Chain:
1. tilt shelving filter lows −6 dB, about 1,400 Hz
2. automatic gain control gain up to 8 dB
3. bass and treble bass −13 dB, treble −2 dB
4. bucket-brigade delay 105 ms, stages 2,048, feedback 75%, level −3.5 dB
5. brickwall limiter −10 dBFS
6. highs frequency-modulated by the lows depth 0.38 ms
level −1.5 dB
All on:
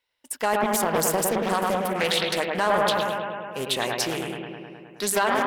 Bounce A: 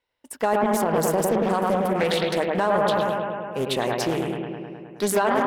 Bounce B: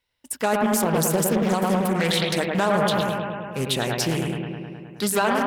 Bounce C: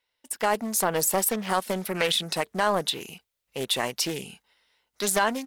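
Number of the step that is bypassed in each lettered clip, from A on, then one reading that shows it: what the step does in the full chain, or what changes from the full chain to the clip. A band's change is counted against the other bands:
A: 1, 8 kHz band −7.0 dB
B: 3, 125 Hz band +9.5 dB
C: 4, change in momentary loudness spread +2 LU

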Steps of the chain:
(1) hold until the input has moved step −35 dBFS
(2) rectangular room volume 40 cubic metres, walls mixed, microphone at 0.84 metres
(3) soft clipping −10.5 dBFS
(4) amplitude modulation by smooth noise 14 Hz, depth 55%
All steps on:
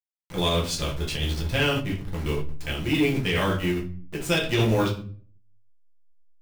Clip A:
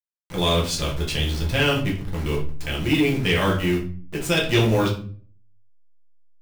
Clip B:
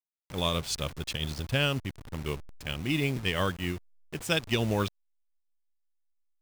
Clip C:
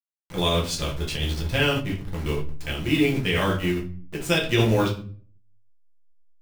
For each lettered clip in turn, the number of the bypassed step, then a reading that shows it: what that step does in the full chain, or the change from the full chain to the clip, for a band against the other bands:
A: 4, change in integrated loudness +3.0 LU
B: 2, change in crest factor +5.0 dB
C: 3, distortion level −18 dB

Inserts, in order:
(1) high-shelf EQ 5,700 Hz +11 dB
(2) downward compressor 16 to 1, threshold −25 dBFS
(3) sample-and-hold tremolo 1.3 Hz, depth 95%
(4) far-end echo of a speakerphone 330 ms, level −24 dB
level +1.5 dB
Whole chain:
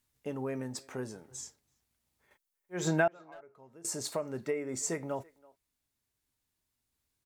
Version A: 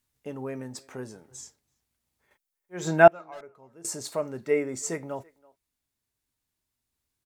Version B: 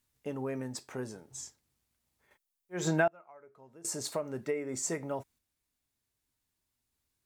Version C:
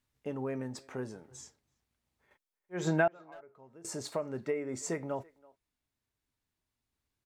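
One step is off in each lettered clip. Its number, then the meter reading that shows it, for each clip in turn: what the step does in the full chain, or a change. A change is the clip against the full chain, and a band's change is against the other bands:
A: 2, average gain reduction 3.0 dB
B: 4, echo-to-direct ratio −26.0 dB to none audible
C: 1, 8 kHz band −6.0 dB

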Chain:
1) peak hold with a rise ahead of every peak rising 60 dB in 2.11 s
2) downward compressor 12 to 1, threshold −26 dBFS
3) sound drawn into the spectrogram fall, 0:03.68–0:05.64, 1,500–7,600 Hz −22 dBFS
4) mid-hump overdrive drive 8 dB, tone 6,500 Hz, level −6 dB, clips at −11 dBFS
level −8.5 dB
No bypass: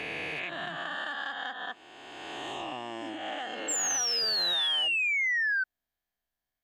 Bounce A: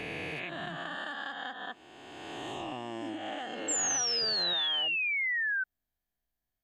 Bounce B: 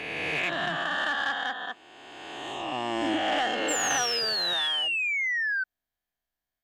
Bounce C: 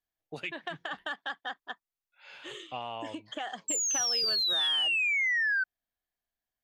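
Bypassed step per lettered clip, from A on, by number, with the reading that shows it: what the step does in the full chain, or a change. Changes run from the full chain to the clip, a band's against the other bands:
4, change in crest factor +3.0 dB
2, average gain reduction 6.0 dB
1, change in momentary loudness spread +4 LU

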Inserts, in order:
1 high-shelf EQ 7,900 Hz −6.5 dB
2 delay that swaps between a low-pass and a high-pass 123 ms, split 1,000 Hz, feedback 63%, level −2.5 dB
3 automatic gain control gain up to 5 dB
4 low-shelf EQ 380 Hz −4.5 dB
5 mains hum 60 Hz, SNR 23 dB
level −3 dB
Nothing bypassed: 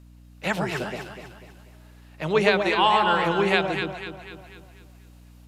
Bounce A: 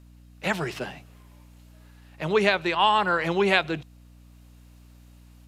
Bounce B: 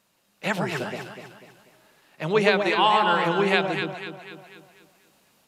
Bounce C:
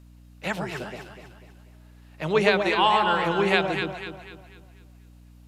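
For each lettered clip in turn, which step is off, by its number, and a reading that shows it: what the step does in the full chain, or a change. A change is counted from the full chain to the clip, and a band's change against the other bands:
2, change in momentary loudness spread −6 LU
5, change in momentary loudness spread −2 LU
3, change in momentary loudness spread −2 LU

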